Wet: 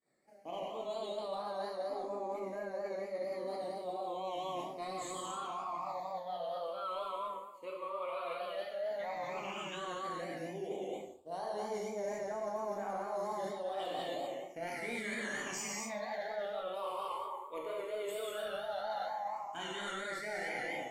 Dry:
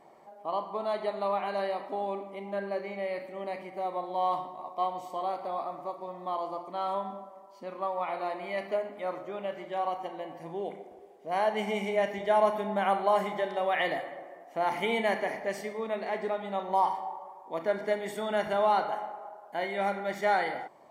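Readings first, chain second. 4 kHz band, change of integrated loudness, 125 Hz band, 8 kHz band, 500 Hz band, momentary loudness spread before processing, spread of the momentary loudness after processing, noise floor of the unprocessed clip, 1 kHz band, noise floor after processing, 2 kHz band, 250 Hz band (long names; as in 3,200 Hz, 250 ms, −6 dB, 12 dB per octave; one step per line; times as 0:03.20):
−3.5 dB, −8.0 dB, −8.0 dB, can't be measured, −7.5 dB, 12 LU, 3 LU, −52 dBFS, −9.5 dB, −47 dBFS, −7.0 dB, −8.0 dB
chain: high-shelf EQ 2,100 Hz +6.5 dB
in parallel at −9.5 dB: hard clipping −27.5 dBFS, distortion −8 dB
on the sum: parametric band 7,100 Hz +12 dB 0.37 octaves
downward expander −40 dBFS
all-pass phaser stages 8, 0.1 Hz, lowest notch 220–3,100 Hz
reverb whose tail is shaped and stops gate 310 ms flat, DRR −5 dB
pitch vibrato 4.3 Hz 54 cents
mains-hum notches 50/100/150 Hz
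reversed playback
downward compressor 6 to 1, threshold −34 dBFS, peak gain reduction 19 dB
reversed playback
level −3 dB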